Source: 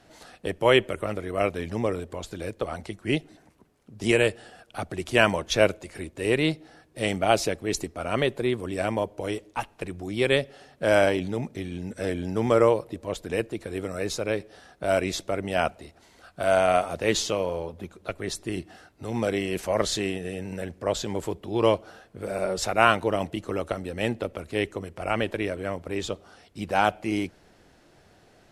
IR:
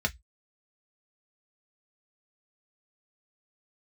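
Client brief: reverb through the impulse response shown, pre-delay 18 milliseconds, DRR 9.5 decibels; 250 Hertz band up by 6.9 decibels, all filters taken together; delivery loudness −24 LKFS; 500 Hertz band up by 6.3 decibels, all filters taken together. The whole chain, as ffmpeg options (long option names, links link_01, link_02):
-filter_complex "[0:a]equalizer=frequency=250:width_type=o:gain=7,equalizer=frequency=500:width_type=o:gain=6,asplit=2[link_01][link_02];[1:a]atrim=start_sample=2205,adelay=18[link_03];[link_02][link_03]afir=irnorm=-1:irlink=0,volume=-17.5dB[link_04];[link_01][link_04]amix=inputs=2:normalize=0,volume=-3dB"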